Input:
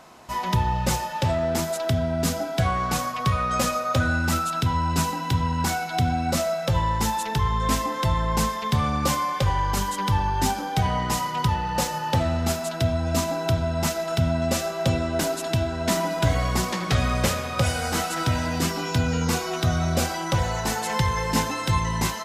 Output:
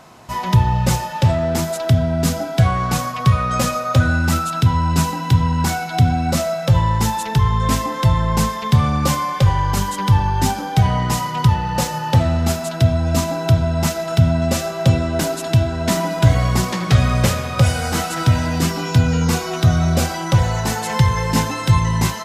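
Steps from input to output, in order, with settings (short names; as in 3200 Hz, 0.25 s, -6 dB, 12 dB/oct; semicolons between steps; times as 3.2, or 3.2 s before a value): bell 120 Hz +8 dB 1.1 oct; gain +3.5 dB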